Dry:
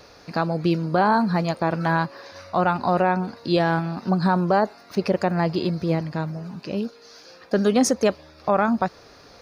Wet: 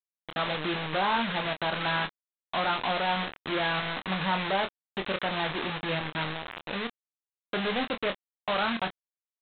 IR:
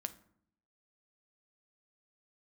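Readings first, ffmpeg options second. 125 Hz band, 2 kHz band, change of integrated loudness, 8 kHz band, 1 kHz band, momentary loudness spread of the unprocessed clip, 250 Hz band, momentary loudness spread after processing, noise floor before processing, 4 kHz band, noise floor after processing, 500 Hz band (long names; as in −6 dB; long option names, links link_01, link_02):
−12.5 dB, −0.5 dB, −7.0 dB, below −40 dB, −6.5 dB, 10 LU, −12.5 dB, 8 LU, −49 dBFS, +4.5 dB, below −85 dBFS, −10.0 dB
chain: -filter_complex "[0:a]aeval=exprs='(tanh(12.6*val(0)+0.3)-tanh(0.3))/12.6':channel_layout=same,lowpass=frequency=2000:width=0.5412,lowpass=frequency=2000:width=1.3066,aresample=8000,acrusher=bits=4:mix=0:aa=0.000001,aresample=44100,tiltshelf=frequency=690:gain=-6.5,asplit=2[link_01][link_02];[link_02]adelay=26,volume=-7.5dB[link_03];[link_01][link_03]amix=inputs=2:normalize=0,volume=-3.5dB"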